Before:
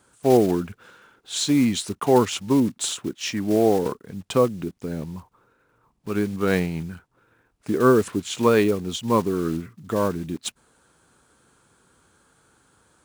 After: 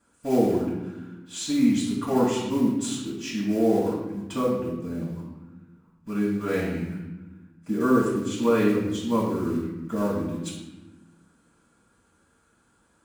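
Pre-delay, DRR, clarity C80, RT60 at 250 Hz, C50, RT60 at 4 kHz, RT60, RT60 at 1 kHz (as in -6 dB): 4 ms, -8.0 dB, 4.5 dB, 1.7 s, 2.0 dB, 0.75 s, 1.1 s, 1.0 s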